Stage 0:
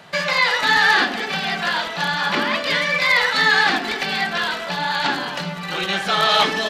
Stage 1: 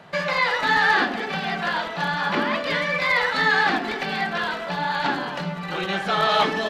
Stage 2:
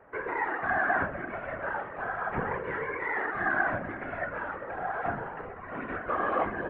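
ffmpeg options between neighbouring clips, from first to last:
-af "highshelf=f=2.4k:g=-11"
-af "highpass=f=240:t=q:w=0.5412,highpass=f=240:t=q:w=1.307,lowpass=f=2.1k:t=q:w=0.5176,lowpass=f=2.1k:t=q:w=0.7071,lowpass=f=2.1k:t=q:w=1.932,afreqshift=-120,afftfilt=real='hypot(re,im)*cos(2*PI*random(0))':imag='hypot(re,im)*sin(2*PI*random(1))':win_size=512:overlap=0.75,volume=-2dB"

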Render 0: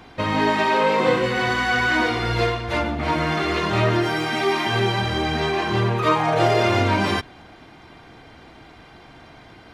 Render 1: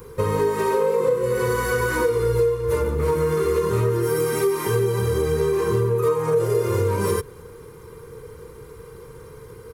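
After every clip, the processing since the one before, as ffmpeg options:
-af "firequalizer=gain_entry='entry(140,0);entry(280,-16);entry(460,13);entry(680,-28);entry(980,-4);entry(1700,-13);entry(3200,-18);entry(6800,0);entry(11000,15)':delay=0.05:min_phase=1,acompressor=threshold=-24dB:ratio=6,volume=6.5dB"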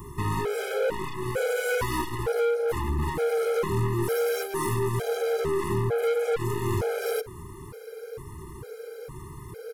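-af "aeval=exprs='(tanh(20*val(0)+0.25)-tanh(0.25))/20':c=same,afftfilt=real='re*gt(sin(2*PI*1.1*pts/sr)*(1-2*mod(floor(b*sr/1024/420),2)),0)':imag='im*gt(sin(2*PI*1.1*pts/sr)*(1-2*mod(floor(b*sr/1024/420),2)),0)':win_size=1024:overlap=0.75,volume=4.5dB"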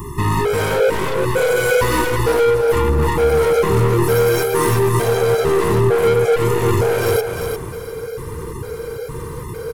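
-filter_complex "[0:a]asplit=2[a][b];[b]asoftclip=type=tanh:threshold=-29dB,volume=-4dB[c];[a][c]amix=inputs=2:normalize=0,aecho=1:1:350|700|1050:0.501|0.115|0.0265,volume=7.5dB"

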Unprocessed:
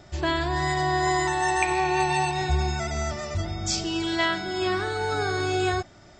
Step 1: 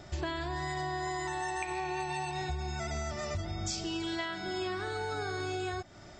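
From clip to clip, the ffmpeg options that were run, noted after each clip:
-af "acompressor=threshold=-32dB:ratio=12"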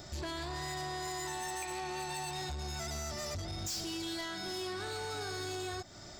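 -af "aexciter=amount=1.7:drive=8.6:freq=3.8k,asoftclip=type=tanh:threshold=-35.5dB"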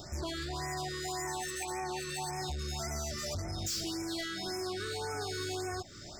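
-af "afftfilt=real='re*(1-between(b*sr/1024,750*pow(3700/750,0.5+0.5*sin(2*PI*1.8*pts/sr))/1.41,750*pow(3700/750,0.5+0.5*sin(2*PI*1.8*pts/sr))*1.41))':imag='im*(1-between(b*sr/1024,750*pow(3700/750,0.5+0.5*sin(2*PI*1.8*pts/sr))/1.41,750*pow(3700/750,0.5+0.5*sin(2*PI*1.8*pts/sr))*1.41))':win_size=1024:overlap=0.75,volume=2.5dB"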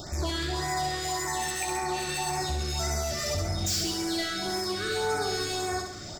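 -af "aecho=1:1:66|132|198|264|330|396|462:0.562|0.304|0.164|0.0885|0.0478|0.0258|0.0139,volume=6dB"

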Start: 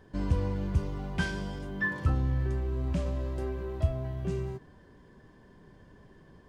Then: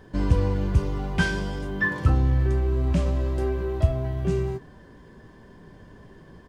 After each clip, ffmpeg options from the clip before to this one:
-filter_complex "[0:a]asplit=2[a][b];[b]adelay=18,volume=-12dB[c];[a][c]amix=inputs=2:normalize=0,volume=7dB"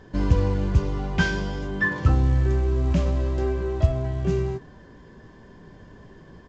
-af "volume=1dB" -ar 16000 -c:a pcm_mulaw

